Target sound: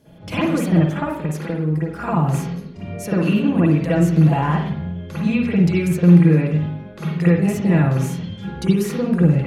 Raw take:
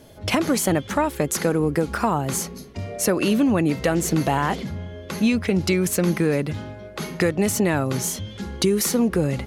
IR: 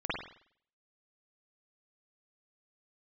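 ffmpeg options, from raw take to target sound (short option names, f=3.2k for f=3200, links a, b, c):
-filter_complex "[0:a]equalizer=f=160:t=o:w=0.74:g=11,asettb=1/sr,asplit=3[a][b][c];[a]atrim=end=0.994[d];[b]atrim=start=0.99:end=2.02,asetpts=PTS-STARTPTS,afade=t=in:d=0.004:c=qsin,afade=t=out:st=1.026:d=0.004:c=qsin,acompressor=threshold=-20dB:ratio=6[e];[c]atrim=start=2.016[f];[d][e]acrossfade=d=0.004:c1=hsin:c2=qsin[g];[g][f]acrossfade=d=0.004:c1=qsin:c2=hsin[h];[1:a]atrim=start_sample=2205[i];[h][i]afir=irnorm=-1:irlink=0,volume=-8dB"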